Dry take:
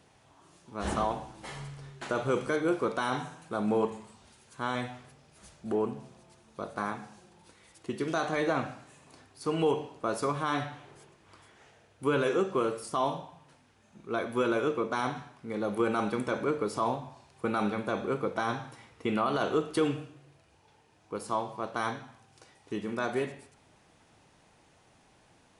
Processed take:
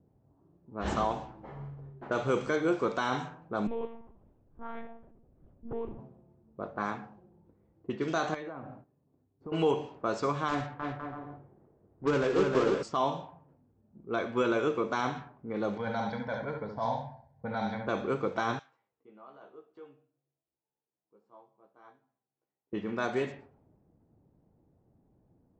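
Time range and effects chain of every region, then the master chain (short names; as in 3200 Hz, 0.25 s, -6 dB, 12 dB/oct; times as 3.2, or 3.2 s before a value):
3.67–5.99 block floating point 5-bit + compressor 1.5:1, threshold -44 dBFS + monotone LPC vocoder at 8 kHz 230 Hz
8.34–9.52 gate -52 dBFS, range -11 dB + HPF 59 Hz + compressor 5:1, threshold -38 dBFS
10.48–12.83 block floating point 3-bit + LPF 1500 Hz 6 dB/oct + bouncing-ball echo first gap 0.31 s, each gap 0.65×, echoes 5
15.77–17.87 fixed phaser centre 1800 Hz, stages 8 + echo 70 ms -5 dB
18.59–22.73 differentiator + doubler 15 ms -4 dB
whole clip: steep low-pass 7900 Hz 96 dB/oct; low-pass opened by the level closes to 320 Hz, open at -26.5 dBFS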